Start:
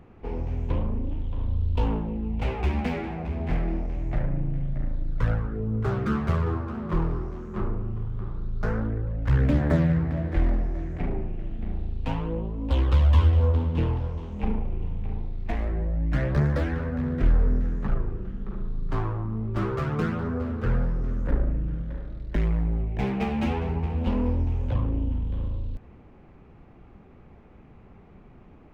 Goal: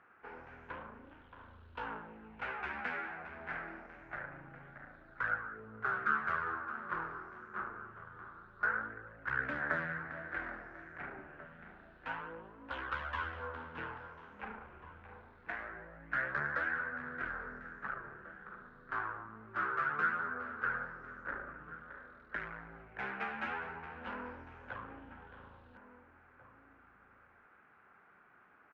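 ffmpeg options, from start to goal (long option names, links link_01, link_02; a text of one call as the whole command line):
ffmpeg -i in.wav -filter_complex "[0:a]bandpass=frequency=1500:width_type=q:width=5.8:csg=0,asplit=2[link_01][link_02];[link_02]adelay=1691,volume=-13dB,highshelf=frequency=4000:gain=-38[link_03];[link_01][link_03]amix=inputs=2:normalize=0,volume=8.5dB" out.wav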